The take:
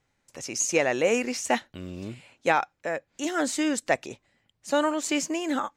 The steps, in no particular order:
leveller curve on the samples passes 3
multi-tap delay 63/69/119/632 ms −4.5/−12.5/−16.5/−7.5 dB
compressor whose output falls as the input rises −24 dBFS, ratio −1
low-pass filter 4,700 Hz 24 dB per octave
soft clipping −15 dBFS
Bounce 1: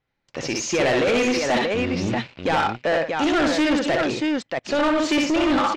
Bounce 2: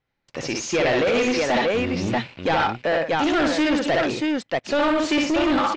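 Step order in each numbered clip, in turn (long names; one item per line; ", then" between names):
compressor whose output falls as the input rises, then multi-tap delay, then leveller curve on the samples, then low-pass filter, then soft clipping
multi-tap delay, then soft clipping, then compressor whose output falls as the input rises, then leveller curve on the samples, then low-pass filter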